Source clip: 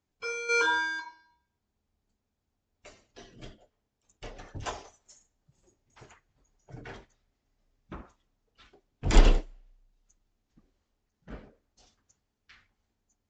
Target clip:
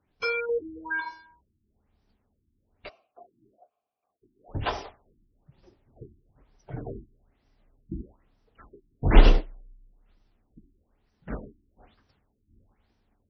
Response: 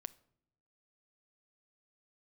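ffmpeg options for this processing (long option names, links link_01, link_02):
-filter_complex "[0:a]asplit=2[link_01][link_02];[link_02]acompressor=threshold=-37dB:ratio=6,volume=0dB[link_03];[link_01][link_03]amix=inputs=2:normalize=0,asplit=3[link_04][link_05][link_06];[link_04]afade=type=out:start_time=2.88:duration=0.02[link_07];[link_05]asplit=3[link_08][link_09][link_10];[link_08]bandpass=frequency=730:width_type=q:width=8,volume=0dB[link_11];[link_09]bandpass=frequency=1090:width_type=q:width=8,volume=-6dB[link_12];[link_10]bandpass=frequency=2440:width_type=q:width=8,volume=-9dB[link_13];[link_11][link_12][link_13]amix=inputs=3:normalize=0,afade=type=in:start_time=2.88:duration=0.02,afade=type=out:start_time=4.48:duration=0.02[link_14];[link_06]afade=type=in:start_time=4.48:duration=0.02[link_15];[link_07][link_14][link_15]amix=inputs=3:normalize=0,afftfilt=real='re*lt(b*sr/1024,360*pow(6200/360,0.5+0.5*sin(2*PI*1.1*pts/sr)))':imag='im*lt(b*sr/1024,360*pow(6200/360,0.5+0.5*sin(2*PI*1.1*pts/sr)))':win_size=1024:overlap=0.75,volume=3.5dB"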